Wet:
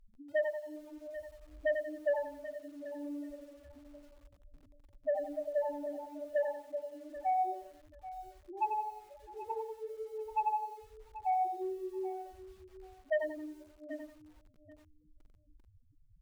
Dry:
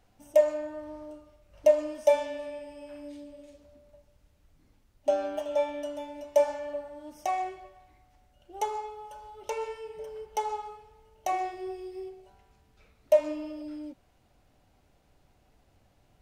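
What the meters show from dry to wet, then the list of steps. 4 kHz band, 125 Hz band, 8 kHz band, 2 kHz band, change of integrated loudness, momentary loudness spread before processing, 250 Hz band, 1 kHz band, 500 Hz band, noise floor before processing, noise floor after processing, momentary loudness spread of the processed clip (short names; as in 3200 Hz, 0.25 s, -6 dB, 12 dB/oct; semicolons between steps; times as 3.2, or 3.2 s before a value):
under -10 dB, n/a, under -15 dB, 0.0 dB, -7.0 dB, 20 LU, -4.5 dB, -1.0 dB, -8.0 dB, -66 dBFS, -65 dBFS, 19 LU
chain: low-pass opened by the level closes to 510 Hz, open at -21 dBFS; Bessel low-pass 2000 Hz, order 2; notches 60/120/180/240/300 Hz; reverb removal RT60 0.88 s; dynamic EQ 880 Hz, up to +7 dB, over -43 dBFS, Q 2.5; compressor 1.5:1, threshold -56 dBFS, peak gain reduction 15 dB; loudest bins only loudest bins 2; sine folder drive 5 dB, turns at -25.5 dBFS; feedback echo 0.784 s, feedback 18%, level -14.5 dB; lo-fi delay 90 ms, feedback 35%, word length 10-bit, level -6 dB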